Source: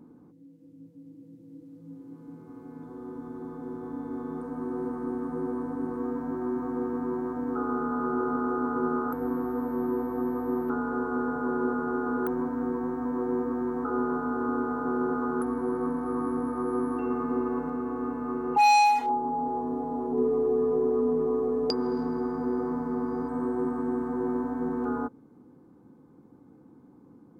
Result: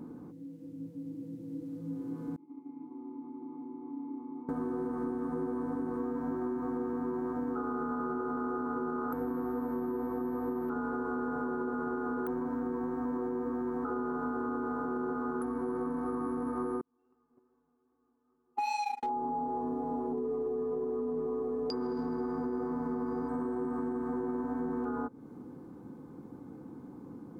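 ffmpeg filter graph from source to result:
-filter_complex "[0:a]asettb=1/sr,asplit=3[a][b][c];[a]atrim=end=2.364[d];[b]atrim=start=2.36:end=4.49,asetpts=PTS-STARTPTS,afade=t=in:d=0.004:c=qsin,afade=t=out:st=2.126:d=0.004:c=qsin,agate=range=-33dB:threshold=-41dB:ratio=3:release=100:detection=peak,acompressor=threshold=-40dB:ratio=2.5:attack=3.2:release=140:knee=1:detection=peak,asplit=3[e][f][g];[e]bandpass=f=300:t=q:w=8,volume=0dB[h];[f]bandpass=f=870:t=q:w=8,volume=-6dB[i];[g]bandpass=f=2.24k:t=q:w=8,volume=-9dB[j];[h][i][j]amix=inputs=3:normalize=0[k];[c]atrim=start=4.486[l];[d][k]acrossfade=d=0.004:c1=hsin:c2=qsin[m];[m][l]acrossfade=d=0.004:c1=qsin:c2=hsin,asettb=1/sr,asplit=3[n][o][p];[n]atrim=end=16.814[q];[o]atrim=start=16.81:end=19.03,asetpts=PTS-STARTPTS,afade=t=in:d=0.004:c=qsin,afade=t=out:st=2.216:d=0.004:c=qsin,flanger=delay=17:depth=4.9:speed=2.5,agate=range=-47dB:threshold=-24dB:ratio=16:release=100:detection=peak[r];[p]atrim=start=19.026[s];[q][r]acrossfade=d=0.004:c1=hsin:c2=qsin[t];[t][s]acrossfade=d=0.004:c1=qsin:c2=hsin,alimiter=limit=-22.5dB:level=0:latency=1:release=39,acompressor=threshold=-39dB:ratio=6,volume=7dB"

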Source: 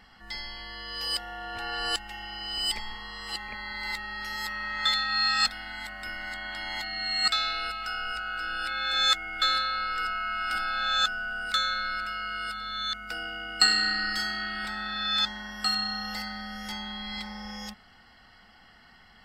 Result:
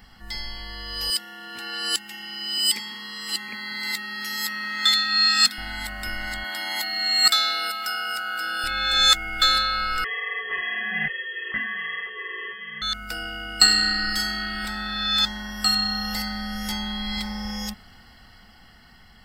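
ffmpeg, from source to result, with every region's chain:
-filter_complex "[0:a]asettb=1/sr,asplit=3[a][b][c];[a]atrim=end=1.104[d];[b]atrim=start=1.1:end=5.58,asetpts=PTS-STARTPTS,afade=t=in:d=0.004:c=qsin,afade=t=out:st=4.476:d=0.004:c=qsin,highpass=f=180:w=0.5412,highpass=f=180:w=1.3066,equalizer=f=680:t=o:w=1.1:g=-12.5[e];[c]atrim=start=5.576[f];[d][e]acrossfade=d=0.004:c1=hsin:c2=qsin[g];[g][f]acrossfade=d=0.004:c1=qsin:c2=hsin,asettb=1/sr,asplit=3[h][i][j];[h]atrim=end=6.444[k];[i]atrim=start=6.44:end=8.64,asetpts=PTS-STARTPTS,afade=t=in:d=0.004:c=qsin,afade=t=out:st=2.196:d=0.004:c=qsin,highpass=280,equalizer=f=13k:w=1.2:g=9,bandreject=f=2.6k:w=13[l];[j]atrim=start=8.636[m];[k][l]acrossfade=d=0.004:c1=hsin:c2=qsin[n];[n][m]acrossfade=d=0.004:c1=qsin:c2=hsin,asettb=1/sr,asplit=3[o][p][q];[o]atrim=end=10.044[r];[p]atrim=start=10.04:end=12.82,asetpts=PTS-STARTPTS,afade=t=in:d=0.004:c=qsin,afade=t=out:st=2.776:d=0.004:c=qsin,flanger=delay=18:depth=4.8:speed=1.2,lowpass=f=2.8k:t=q:w=0.5098,lowpass=f=2.8k:t=q:w=0.6013,lowpass=f=2.8k:t=q:w=0.9,lowpass=f=2.8k:t=q:w=2.563,afreqshift=-3300[s];[q]atrim=start=12.816[t];[r][s]acrossfade=d=0.004:c1=hsin:c2=qsin[u];[u][t]acrossfade=d=0.004:c1=qsin:c2=hsin,aemphasis=mode=production:type=50kf,dynaudnorm=f=880:g=5:m=4dB,lowshelf=f=280:g=10"

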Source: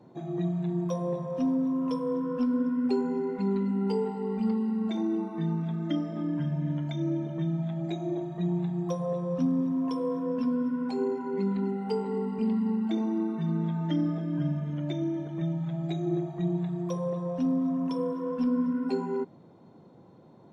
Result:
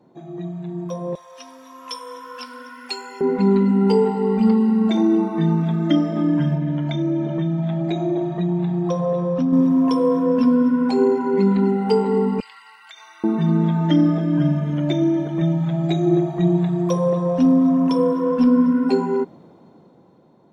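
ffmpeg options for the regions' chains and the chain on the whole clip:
-filter_complex "[0:a]asettb=1/sr,asplit=3[a][b][c];[a]atrim=end=1.154[d];[b]atrim=start=1.15:end=3.21,asetpts=PTS-STARTPTS,afade=t=in:d=0.004:c=qsin,afade=t=out:st=2.056:d=0.004:c=qsin,highpass=1.4k,highshelf=f=3k:g=9.5[e];[c]atrim=start=3.206[f];[d][e]acrossfade=d=0.004:c1=hsin:c2=qsin[g];[g][f]acrossfade=d=0.004:c1=qsin:c2=hsin,asettb=1/sr,asplit=3[h][i][j];[h]atrim=end=6.554[k];[i]atrim=start=6.55:end=9.53,asetpts=PTS-STARTPTS,afade=t=in:d=0.004:c=qsin,afade=t=out:st=2.976:d=0.004:c=qsin,lowpass=5.2k,acompressor=threshold=-30dB:ratio=2.5:attack=3.2:release=140:knee=1:detection=peak[l];[j]atrim=start=9.526[m];[k][l]acrossfade=d=0.004:c1=hsin:c2=qsin[n];[n][m]acrossfade=d=0.004:c1=qsin:c2=hsin,asettb=1/sr,asplit=3[o][p][q];[o]atrim=end=12.404[r];[p]atrim=start=12.4:end=13.24,asetpts=PTS-STARTPTS,afade=t=in:d=0.004:c=qsin,afade=t=out:st=0.836:d=0.004:c=qsin,highpass=f=1.4k:w=0.5412,highpass=f=1.4k:w=1.3066,acompressor=threshold=-51dB:ratio=4:attack=3.2:release=140:knee=1:detection=peak[s];[q]atrim=start=13.236[t];[r][s]acrossfade=d=0.004:c1=hsin:c2=qsin[u];[u][t]acrossfade=d=0.004:c1=qsin:c2=hsin,equalizer=f=110:t=o:w=0.77:g=-6.5,dynaudnorm=f=350:g=9:m=12.5dB"

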